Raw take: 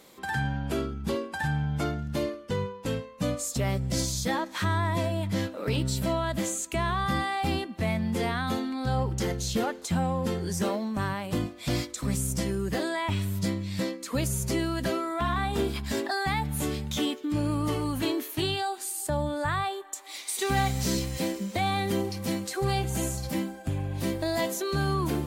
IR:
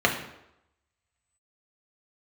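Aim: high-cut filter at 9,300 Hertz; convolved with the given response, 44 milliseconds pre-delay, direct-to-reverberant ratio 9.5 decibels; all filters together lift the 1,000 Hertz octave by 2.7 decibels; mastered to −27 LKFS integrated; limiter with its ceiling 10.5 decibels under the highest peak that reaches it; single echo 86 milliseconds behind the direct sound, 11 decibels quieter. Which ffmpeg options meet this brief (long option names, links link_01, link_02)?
-filter_complex "[0:a]lowpass=9300,equalizer=frequency=1000:width_type=o:gain=3.5,alimiter=limit=-24dB:level=0:latency=1,aecho=1:1:86:0.282,asplit=2[link_01][link_02];[1:a]atrim=start_sample=2205,adelay=44[link_03];[link_02][link_03]afir=irnorm=-1:irlink=0,volume=-26dB[link_04];[link_01][link_04]amix=inputs=2:normalize=0,volume=5dB"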